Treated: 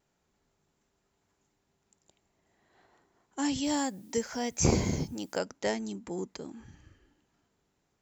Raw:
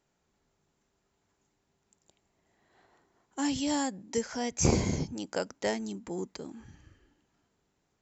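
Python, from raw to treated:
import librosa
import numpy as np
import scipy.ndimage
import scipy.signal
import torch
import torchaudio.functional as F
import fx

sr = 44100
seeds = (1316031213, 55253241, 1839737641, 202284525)

y = fx.dmg_noise_colour(x, sr, seeds[0], colour='blue', level_db=-65.0, at=(3.63, 5.38), fade=0.02)
y = fx.vibrato(y, sr, rate_hz=0.35, depth_cents=6.8)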